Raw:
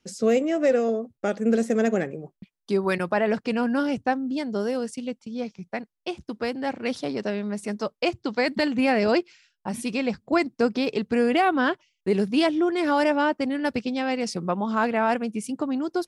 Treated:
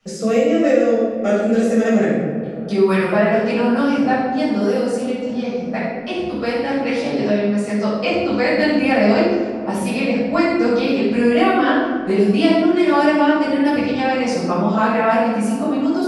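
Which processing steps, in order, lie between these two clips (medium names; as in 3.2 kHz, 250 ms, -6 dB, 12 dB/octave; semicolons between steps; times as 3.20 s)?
6.76–8.11 s: low-pass 9.9 kHz 24 dB/octave; on a send: feedback echo behind a low-pass 424 ms, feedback 67%, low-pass 1.3 kHz, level -18 dB; on the sum: simulated room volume 550 m³, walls mixed, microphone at 6.4 m; three bands compressed up and down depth 40%; trim -7 dB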